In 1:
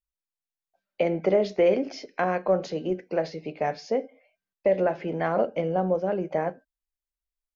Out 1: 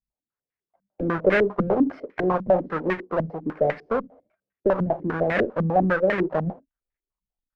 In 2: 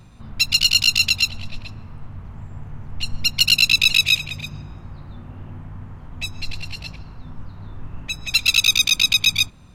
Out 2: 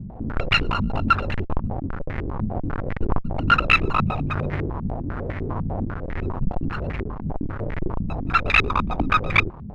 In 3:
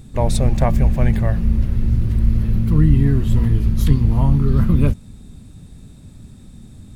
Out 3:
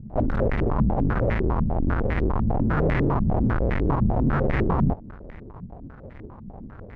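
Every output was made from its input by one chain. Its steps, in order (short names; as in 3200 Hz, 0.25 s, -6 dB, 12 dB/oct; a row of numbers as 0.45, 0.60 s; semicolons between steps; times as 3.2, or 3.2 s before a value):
half-waves squared off; tube stage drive 16 dB, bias 0.45; stepped low-pass 10 Hz 200–2000 Hz; match loudness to -24 LUFS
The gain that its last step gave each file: -1.5, +4.5, -5.5 dB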